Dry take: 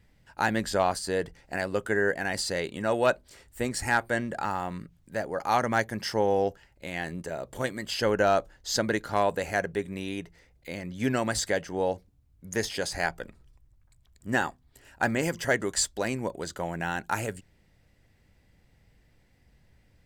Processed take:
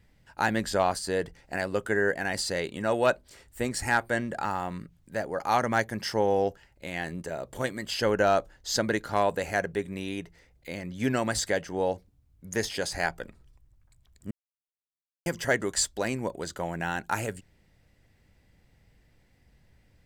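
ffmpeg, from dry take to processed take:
ffmpeg -i in.wav -filter_complex "[0:a]asplit=3[link_01][link_02][link_03];[link_01]atrim=end=14.31,asetpts=PTS-STARTPTS,afade=type=out:start_time=14.306:duration=0.004:curve=hsin[link_04];[link_02]atrim=start=14.31:end=15.26,asetpts=PTS-STARTPTS,volume=0[link_05];[link_03]atrim=start=15.26,asetpts=PTS-STARTPTS,afade=type=in:duration=0.004:curve=hsin[link_06];[link_04][link_05][link_06]concat=n=3:v=0:a=1" out.wav

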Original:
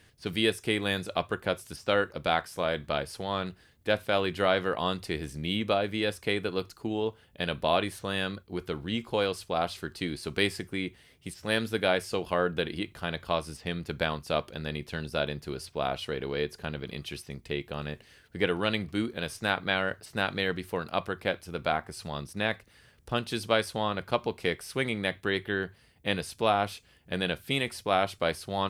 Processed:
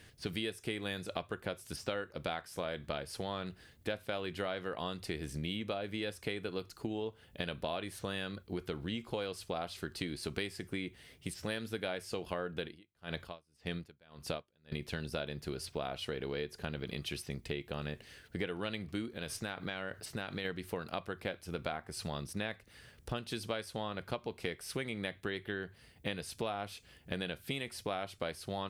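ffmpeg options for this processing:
ffmpeg -i in.wav -filter_complex "[0:a]asettb=1/sr,asplit=3[link_01][link_02][link_03];[link_01]atrim=end=12.634[link_04];[link_02]atrim=start=12.63:end=14.72,asetpts=PTS-STARTPTS,afade=type=in:duration=0.004:curve=qsin,afade=type=out:start_time=2.086:duration=0.004:curve=qsin,aeval=exprs='val(0)*pow(10,-38*(0.5-0.5*cos(2*PI*1.8*n/s))/20)':channel_layout=same[link_05];[link_03]atrim=start=14.716[link_06];[link_04][link_05]acrossfade=duration=0.004:curve1=hsin:curve2=qsin[link_07];[link_07][link_06]acrossfade=duration=0.004:curve1=qsin:curve2=hsin,asplit=3[link_08][link_09][link_10];[link_08]afade=type=out:start_time=19.08:duration=0.02[link_11];[link_09]acompressor=threshold=-36dB:ratio=2.5:attack=3.2:release=140:knee=1:detection=peak,afade=type=in:start_time=19.08:duration=0.02,afade=type=out:start_time=20.44:duration=0.02[link_12];[link_10]afade=type=in:start_time=20.44:duration=0.02[link_13];[link_11][link_12][link_13]amix=inputs=3:normalize=0,equalizer=frequency=1000:width_type=o:width=0.77:gain=-2.5,acompressor=threshold=-37dB:ratio=6,volume=2dB" out.wav

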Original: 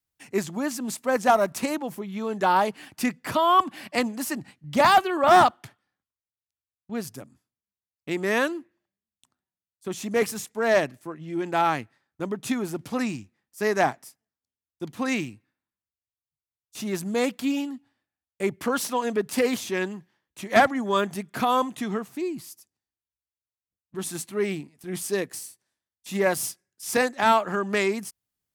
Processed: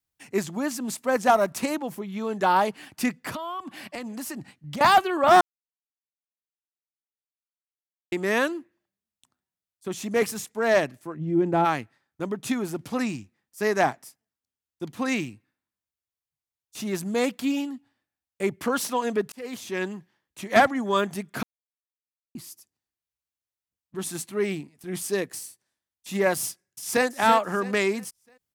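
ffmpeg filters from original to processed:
ffmpeg -i in.wav -filter_complex "[0:a]asettb=1/sr,asplit=3[link_01][link_02][link_03];[link_01]atrim=end=3.294[link_04];[link_02]atrim=start=3.29:end=4.81,asetpts=PTS-STARTPTS,afade=type=in:duration=0.004:curve=qsin,afade=type=out:start_time=1.516:duration=0.004:curve=qsin,acompressor=threshold=-30dB:ratio=10:attack=3.2:release=140:knee=1:detection=peak[link_05];[link_03]atrim=start=4.806[link_06];[link_04][link_05]acrossfade=duration=0.004:curve1=hsin:curve2=qsin[link_07];[link_07][link_06]acrossfade=duration=0.004:curve1=qsin:curve2=hsin,asplit=3[link_08][link_09][link_10];[link_08]afade=type=out:start_time=11.15:duration=0.02[link_11];[link_09]tiltshelf=frequency=810:gain=10,afade=type=in:start_time=11.15:duration=0.02,afade=type=out:start_time=11.64:duration=0.02[link_12];[link_10]afade=type=in:start_time=11.64:duration=0.02[link_13];[link_11][link_12][link_13]amix=inputs=3:normalize=0,asplit=2[link_14][link_15];[link_15]afade=type=in:start_time=26.44:duration=0.01,afade=type=out:start_time=27.05:duration=0.01,aecho=0:1:330|660|990|1320:0.354813|0.124185|0.0434646|0.0152126[link_16];[link_14][link_16]amix=inputs=2:normalize=0,asplit=6[link_17][link_18][link_19][link_20][link_21][link_22];[link_17]atrim=end=5.41,asetpts=PTS-STARTPTS,afade=type=out:start_time=5.406:duration=0.004:curve=hsin[link_23];[link_18]atrim=start=5.41:end=8.12,asetpts=PTS-STARTPTS,volume=0[link_24];[link_19]atrim=start=8.12:end=19.32,asetpts=PTS-STARTPTS,afade=type=in:duration=0.004:curve=hsin,afade=type=out:start_time=11.196:duration=0.004:curve=hsin[link_25];[link_20]atrim=start=19.32:end=21.43,asetpts=PTS-STARTPTS,afade=type=in:duration=0.58,afade=type=out:start_time=2.106:duration=0.004:curve=hsin[link_26];[link_21]atrim=start=21.43:end=22.35,asetpts=PTS-STARTPTS,volume=0[link_27];[link_22]atrim=start=22.35,asetpts=PTS-STARTPTS,afade=type=in:duration=0.004:curve=hsin[link_28];[link_23][link_24][link_25][link_26][link_27][link_28]concat=n=6:v=0:a=1" out.wav

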